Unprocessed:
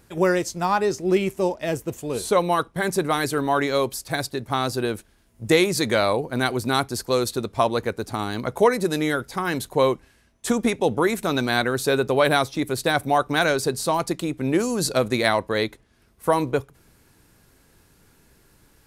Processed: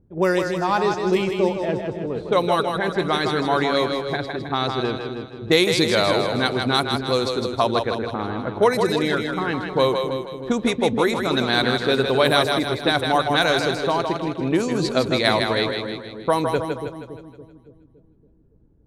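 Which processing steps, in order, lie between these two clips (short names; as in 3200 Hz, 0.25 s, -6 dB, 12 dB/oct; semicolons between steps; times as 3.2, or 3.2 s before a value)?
bell 3700 Hz +6 dB 0.56 oct; low-pass opened by the level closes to 310 Hz, open at -15 dBFS; split-band echo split 400 Hz, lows 0.282 s, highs 0.158 s, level -5 dB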